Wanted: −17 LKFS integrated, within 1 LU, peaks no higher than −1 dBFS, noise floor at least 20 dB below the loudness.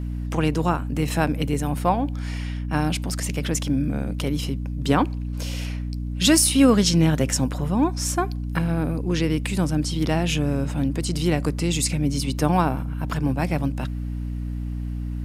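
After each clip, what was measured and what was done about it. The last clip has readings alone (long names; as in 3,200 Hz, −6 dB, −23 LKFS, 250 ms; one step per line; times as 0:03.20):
mains hum 60 Hz; hum harmonics up to 300 Hz; level of the hum −26 dBFS; integrated loudness −23.5 LKFS; sample peak −4.5 dBFS; target loudness −17.0 LKFS
→ hum removal 60 Hz, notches 5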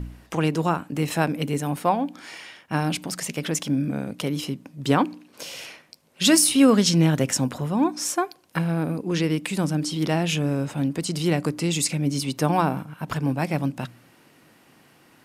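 mains hum none found; integrated loudness −23.5 LKFS; sample peak −5.0 dBFS; target loudness −17.0 LKFS
→ level +6.5 dB
brickwall limiter −1 dBFS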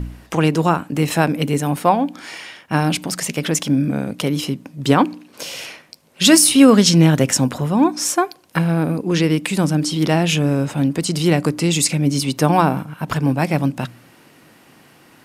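integrated loudness −17.5 LKFS; sample peak −1.0 dBFS; background noise floor −50 dBFS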